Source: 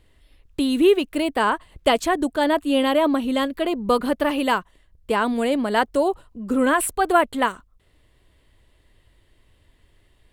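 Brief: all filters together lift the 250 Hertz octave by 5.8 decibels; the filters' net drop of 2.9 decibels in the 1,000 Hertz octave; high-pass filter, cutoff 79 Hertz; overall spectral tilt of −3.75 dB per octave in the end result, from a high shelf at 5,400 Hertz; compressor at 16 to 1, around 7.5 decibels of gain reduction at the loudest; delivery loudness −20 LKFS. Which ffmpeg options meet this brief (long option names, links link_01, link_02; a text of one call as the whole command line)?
ffmpeg -i in.wav -af "highpass=79,equalizer=frequency=250:width_type=o:gain=7,equalizer=frequency=1000:width_type=o:gain=-4,highshelf=frequency=5400:gain=-4,acompressor=threshold=-17dB:ratio=16,volume=3dB" out.wav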